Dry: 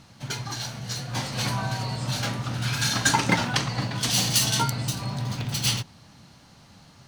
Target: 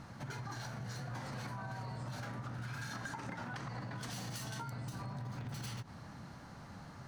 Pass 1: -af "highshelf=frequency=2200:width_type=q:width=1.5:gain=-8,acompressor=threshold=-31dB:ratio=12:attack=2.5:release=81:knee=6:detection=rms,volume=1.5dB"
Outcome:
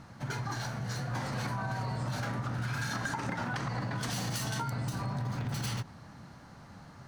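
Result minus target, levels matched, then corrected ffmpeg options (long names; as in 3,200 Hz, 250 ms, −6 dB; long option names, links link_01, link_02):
downward compressor: peak gain reduction −8.5 dB
-af "highshelf=frequency=2200:width_type=q:width=1.5:gain=-8,acompressor=threshold=-40.5dB:ratio=12:attack=2.5:release=81:knee=6:detection=rms,volume=1.5dB"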